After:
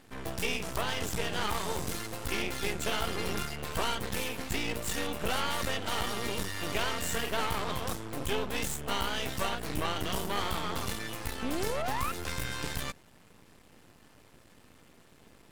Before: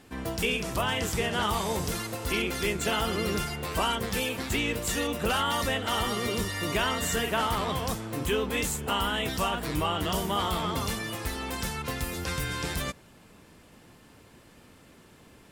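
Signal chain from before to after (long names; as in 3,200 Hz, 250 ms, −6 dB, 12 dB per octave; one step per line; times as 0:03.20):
sound drawn into the spectrogram rise, 0:11.42–0:12.12, 230–1,400 Hz −29 dBFS
half-wave rectification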